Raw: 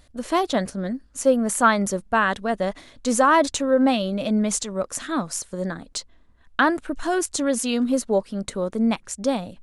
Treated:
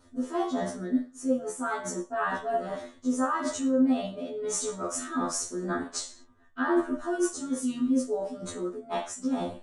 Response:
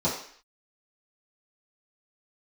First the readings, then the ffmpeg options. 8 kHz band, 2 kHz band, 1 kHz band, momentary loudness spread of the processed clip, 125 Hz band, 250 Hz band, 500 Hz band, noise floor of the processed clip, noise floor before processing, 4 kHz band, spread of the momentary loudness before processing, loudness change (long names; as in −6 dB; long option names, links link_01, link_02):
−6.0 dB, −11.0 dB, −9.5 dB, 8 LU, −11.0 dB, −5.0 dB, −8.0 dB, −56 dBFS, −55 dBFS, −10.5 dB, 11 LU, −7.0 dB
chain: -filter_complex "[1:a]atrim=start_sample=2205,asetrate=61740,aresample=44100[link_01];[0:a][link_01]afir=irnorm=-1:irlink=0,areverse,acompressor=threshold=-16dB:ratio=8,areverse,afftfilt=real='re*2*eq(mod(b,4),0)':imag='im*2*eq(mod(b,4),0)':win_size=2048:overlap=0.75,volume=-6.5dB"